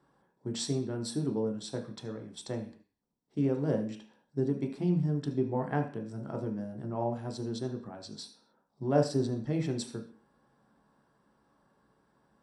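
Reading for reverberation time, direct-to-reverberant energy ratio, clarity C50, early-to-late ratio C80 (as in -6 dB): 0.45 s, 2.5 dB, 9.5 dB, 14.5 dB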